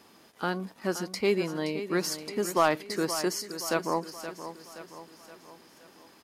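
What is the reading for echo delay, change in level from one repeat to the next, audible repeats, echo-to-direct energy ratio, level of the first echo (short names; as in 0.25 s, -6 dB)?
0.523 s, -6.0 dB, 5, -10.0 dB, -11.5 dB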